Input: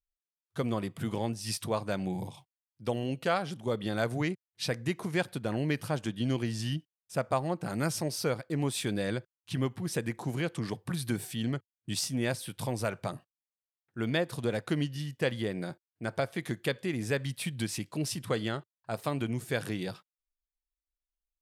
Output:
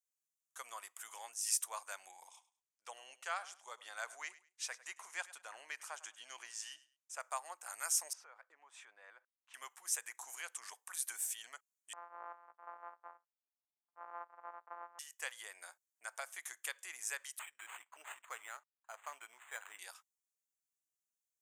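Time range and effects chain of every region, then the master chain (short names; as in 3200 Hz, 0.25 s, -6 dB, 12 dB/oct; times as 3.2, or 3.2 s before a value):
2.11–7.2 air absorption 57 m + feedback echo 0.102 s, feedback 25%, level -18 dB
8.13–9.54 LPF 1700 Hz + compressor 8:1, threshold -35 dBFS
11.93–14.99 sample sorter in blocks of 256 samples + LPF 1200 Hz 24 dB/oct + low shelf 190 Hz +5 dB
17.39–19.79 Chebyshev low-pass 11000 Hz, order 10 + decimation joined by straight lines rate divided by 8×
whole clip: HPF 910 Hz 24 dB/oct; resonant high shelf 5400 Hz +8 dB, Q 3; gain -6 dB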